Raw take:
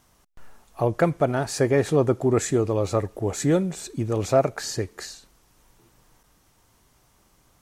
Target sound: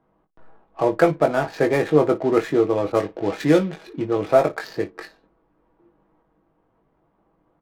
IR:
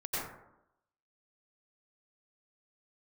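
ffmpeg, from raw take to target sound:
-filter_complex "[0:a]asplit=2[link_01][link_02];[link_02]acrusher=bits=5:mode=log:mix=0:aa=0.000001,volume=-7dB[link_03];[link_01][link_03]amix=inputs=2:normalize=0,acrossover=split=210 4700:gain=0.2 1 0.0794[link_04][link_05][link_06];[link_04][link_05][link_06]amix=inputs=3:normalize=0,adynamicsmooth=sensitivity=7.5:basefreq=750,aecho=1:1:6.2:0.41,asplit=2[link_07][link_08];[link_08]aecho=0:1:20|55:0.531|0.133[link_09];[link_07][link_09]amix=inputs=2:normalize=0,asettb=1/sr,asplit=3[link_10][link_11][link_12];[link_10]atrim=end=2.924[link_13];[link_11]atrim=start=2.92:end=4.06,asetpts=PTS-STARTPTS,afade=type=in:duration=0.004:curve=qsin,afade=type=out:start_time=1.136:duration=0.004:curve=qsin,adynamicequalizer=threshold=0.0158:dfrequency=1700:dqfactor=0.7:tfrequency=1700:tqfactor=0.7:attack=5:release=100:ratio=0.375:range=3:mode=boostabove:tftype=highshelf[link_14];[link_12]atrim=start=4.056[link_15];[link_13][link_14]acrossfade=duration=0.004:curve1=hsin:curve2=qsin[link_16];[link_16][link_15]acrossfade=duration=0.004:curve1=qsin:curve2=hsin"

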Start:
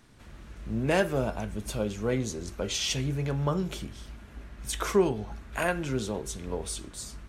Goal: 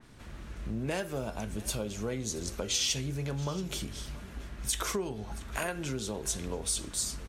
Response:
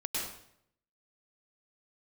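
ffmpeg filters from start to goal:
-filter_complex "[0:a]acompressor=threshold=-35dB:ratio=4,asplit=2[link_01][link_02];[link_02]aecho=0:1:679:0.112[link_03];[link_01][link_03]amix=inputs=2:normalize=0,adynamicequalizer=threshold=0.00158:dfrequency=3200:dqfactor=0.7:tfrequency=3200:tqfactor=0.7:attack=5:release=100:ratio=0.375:range=3.5:mode=boostabove:tftype=highshelf,volume=2.5dB"

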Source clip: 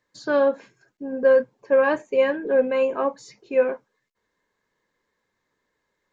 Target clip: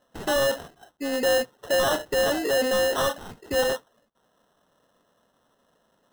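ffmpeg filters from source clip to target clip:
ffmpeg -i in.wav -filter_complex "[0:a]asplit=2[link_01][link_02];[link_02]highpass=frequency=720:poles=1,volume=26dB,asoftclip=type=tanh:threshold=-7.5dB[link_03];[link_01][link_03]amix=inputs=2:normalize=0,lowpass=frequency=3800:poles=1,volume=-6dB,acrusher=samples=19:mix=1:aa=0.000001,volume=-8.5dB" out.wav

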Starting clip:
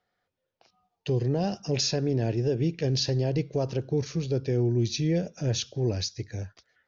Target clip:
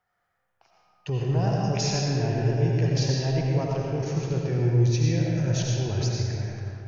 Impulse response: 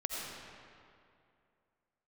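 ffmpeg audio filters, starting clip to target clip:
-filter_complex "[0:a]equalizer=frequency=250:width_type=o:width=1:gain=-8,equalizer=frequency=500:width_type=o:width=1:gain=-8,equalizer=frequency=1000:width_type=o:width=1:gain=5,equalizer=frequency=4000:width_type=o:width=1:gain=-10[link_01];[1:a]atrim=start_sample=2205[link_02];[link_01][link_02]afir=irnorm=-1:irlink=0,volume=3.5dB"

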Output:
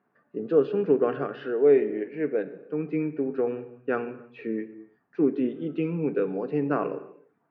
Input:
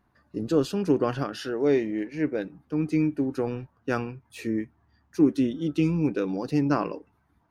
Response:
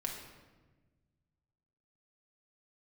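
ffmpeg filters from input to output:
-filter_complex "[0:a]highpass=frequency=170:width=0.5412,highpass=frequency=170:width=1.3066,equalizer=frequency=210:width_type=q:width=4:gain=-5,equalizer=frequency=300:width_type=q:width=4:gain=-5,equalizer=frequency=430:width_type=q:width=4:gain=6,equalizer=frequency=950:width_type=q:width=4:gain=-6,equalizer=frequency=2000:width_type=q:width=4:gain=-3,lowpass=frequency=2400:width=0.5412,lowpass=frequency=2400:width=1.3066,asplit=2[link_01][link_02];[1:a]atrim=start_sample=2205,afade=type=out:start_time=0.37:duration=0.01,atrim=end_sample=16758[link_03];[link_02][link_03]afir=irnorm=-1:irlink=0,volume=-7dB[link_04];[link_01][link_04]amix=inputs=2:normalize=0,volume=-2.5dB"

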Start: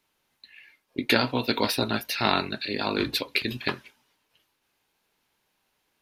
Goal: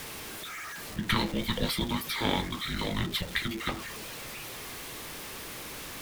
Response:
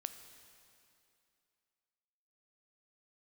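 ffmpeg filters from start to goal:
-af "aeval=exprs='val(0)+0.5*0.0355*sgn(val(0))':channel_layout=same,afreqshift=-460,volume=-6dB"

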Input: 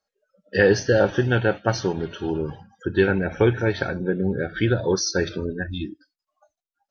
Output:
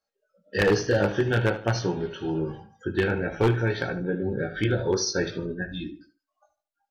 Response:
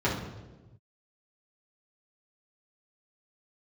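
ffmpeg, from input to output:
-filter_complex "[0:a]flanger=delay=17:depth=2.4:speed=0.53,aeval=exprs='0.211*(abs(mod(val(0)/0.211+3,4)-2)-1)':channel_layout=same,asplit=2[link_01][link_02];[link_02]adelay=75,lowpass=frequency=3200:poles=1,volume=-12.5dB,asplit=2[link_03][link_04];[link_04]adelay=75,lowpass=frequency=3200:poles=1,volume=0.33,asplit=2[link_05][link_06];[link_06]adelay=75,lowpass=frequency=3200:poles=1,volume=0.33[link_07];[link_01][link_03][link_05][link_07]amix=inputs=4:normalize=0"

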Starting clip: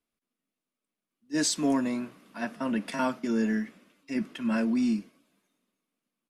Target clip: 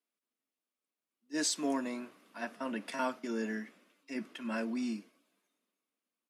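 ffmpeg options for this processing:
ffmpeg -i in.wav -af "highpass=300,volume=-4.5dB" out.wav

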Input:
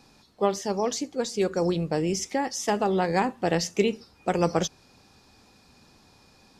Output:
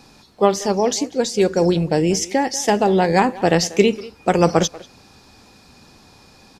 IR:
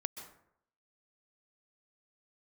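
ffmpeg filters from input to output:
-filter_complex "[0:a]asettb=1/sr,asplit=3[link_01][link_02][link_03];[link_01]atrim=end=0.744[link_04];[link_02]atrim=start=0.74:end=3.19,asetpts=PTS-STARTPTS,afade=type=in:duration=0.004:curve=qsin,afade=type=out:start_time=2.446:duration=0.004:curve=qsin,equalizer=frequency=1200:width_type=o:width=0.31:gain=-9.5[link_05];[link_03]atrim=start=3.186[link_06];[link_04][link_05]acrossfade=duration=0.004:curve1=hsin:curve2=qsin[link_07];[link_07][link_06]acrossfade=duration=0.004:curve1=qsin:curve2=hsin,asplit=2[link_08][link_09];[link_09]adelay=190,highpass=300,lowpass=3400,asoftclip=type=hard:threshold=-18dB,volume=-17dB[link_10];[link_08][link_10]amix=inputs=2:normalize=0,volume=8.5dB"

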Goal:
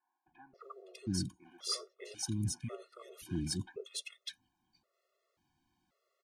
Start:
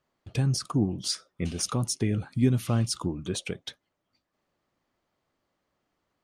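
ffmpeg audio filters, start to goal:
ffmpeg -i in.wav -filter_complex "[0:a]areverse,acompressor=threshold=-34dB:ratio=8,areverse,acrossover=split=470|1600[link_01][link_02][link_03];[link_01]adelay=270[link_04];[link_03]adelay=600[link_05];[link_04][link_02][link_05]amix=inputs=3:normalize=0,afftfilt=real='re*gt(sin(2*PI*0.93*pts/sr)*(1-2*mod(floor(b*sr/1024/360),2)),0)':imag='im*gt(sin(2*PI*0.93*pts/sr)*(1-2*mod(floor(b*sr/1024/360),2)),0)':win_size=1024:overlap=0.75,volume=3dB" out.wav

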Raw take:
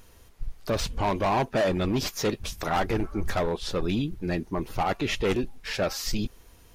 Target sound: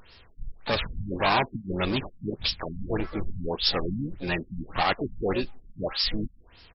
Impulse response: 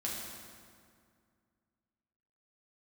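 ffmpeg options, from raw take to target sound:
-filter_complex "[0:a]asplit=3[link_01][link_02][link_03];[link_02]asetrate=33038,aresample=44100,atempo=1.33484,volume=-15dB[link_04];[link_03]asetrate=66075,aresample=44100,atempo=0.66742,volume=-9dB[link_05];[link_01][link_04][link_05]amix=inputs=3:normalize=0,crystalizer=i=9.5:c=0,afftfilt=real='re*lt(b*sr/1024,240*pow(5600/240,0.5+0.5*sin(2*PI*1.7*pts/sr)))':imag='im*lt(b*sr/1024,240*pow(5600/240,0.5+0.5*sin(2*PI*1.7*pts/sr)))':win_size=1024:overlap=0.75,volume=-3dB"

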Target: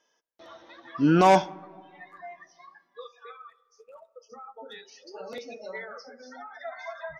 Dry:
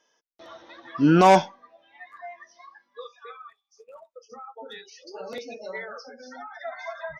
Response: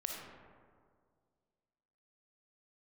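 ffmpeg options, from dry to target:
-filter_complex "[0:a]asplit=2[link_01][link_02];[link_02]asubboost=boost=4:cutoff=74[link_03];[1:a]atrim=start_sample=2205,highshelf=frequency=4700:gain=-10[link_04];[link_03][link_04]afir=irnorm=-1:irlink=0,volume=-17.5dB[link_05];[link_01][link_05]amix=inputs=2:normalize=0,volume=-3.5dB"

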